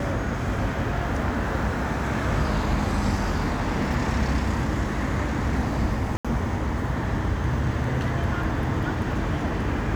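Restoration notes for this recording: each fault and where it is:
0:06.17–0:06.25: drop-out 76 ms

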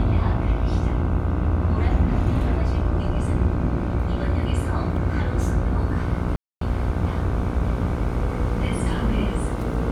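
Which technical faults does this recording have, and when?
mains buzz 60 Hz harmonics 26 −27 dBFS
0:06.36–0:06.61: drop-out 253 ms

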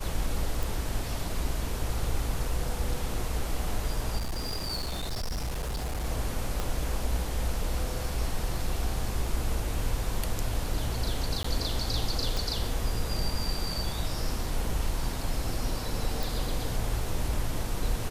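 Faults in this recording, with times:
0:00.63: click
0:04.17–0:06.04: clipping −28 dBFS
0:06.60: click
0:11.43–0:11.44: drop-out 14 ms
0:12.37: click
0:16.23: click

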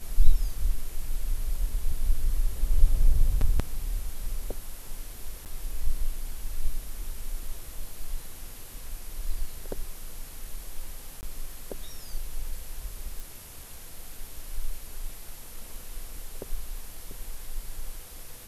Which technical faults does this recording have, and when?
0:05.45–0:05.46: drop-out 8.8 ms
0:11.21–0:11.23: drop-out 19 ms
0:13.20: click

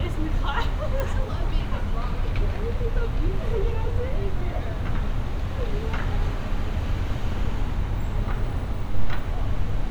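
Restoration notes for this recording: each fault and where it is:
0:01.00: click −14 dBFS

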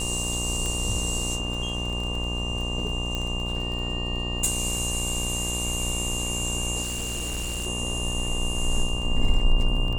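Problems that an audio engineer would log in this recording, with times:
mains buzz 60 Hz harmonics 20 −31 dBFS
surface crackle 14 per second −30 dBFS
whistle 2,800 Hz −31 dBFS
0:00.66: click
0:03.15: click −15 dBFS
0:06.82–0:07.67: clipping −26.5 dBFS

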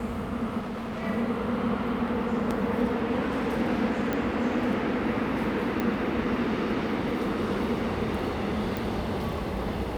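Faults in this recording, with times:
0:00.59–0:01.03: clipping −31 dBFS
0:04.13: click −16 dBFS
0:05.80: click −16 dBFS
0:08.77: click

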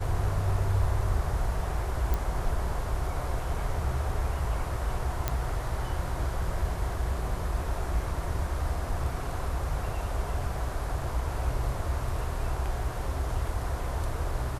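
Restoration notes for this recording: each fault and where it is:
0:02.14: click
0:05.28: click −12 dBFS

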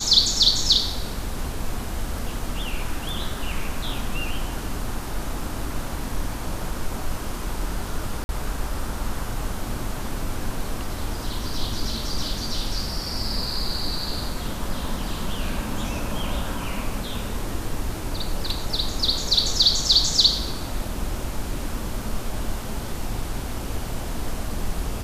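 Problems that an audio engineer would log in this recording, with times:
0:08.24–0:08.29: drop-out 51 ms
0:18.21: drop-out 2.9 ms

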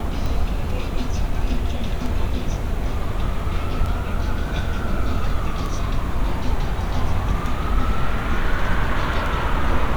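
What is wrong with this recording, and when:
scratch tick

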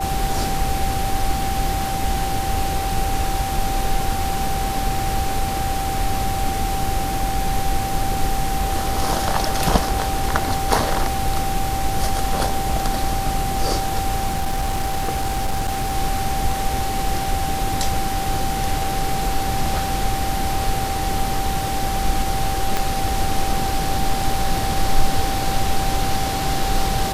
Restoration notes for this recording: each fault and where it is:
whistle 780 Hz −24 dBFS
0:14.27–0:15.93: clipping −17 dBFS
0:22.77: click

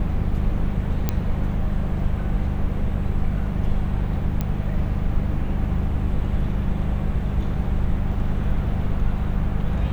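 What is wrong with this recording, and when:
mains hum 50 Hz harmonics 4 −26 dBFS
0:01.09: click −8 dBFS
0:04.41: click −12 dBFS

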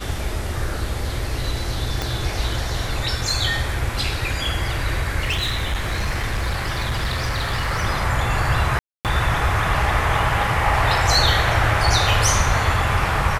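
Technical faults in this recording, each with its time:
0:02.02: click
0:05.19–0:07.83: clipping −18 dBFS
0:08.79–0:09.05: drop-out 258 ms

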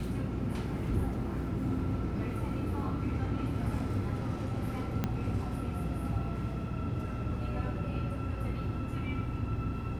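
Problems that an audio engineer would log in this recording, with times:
0:05.04: click −17 dBFS

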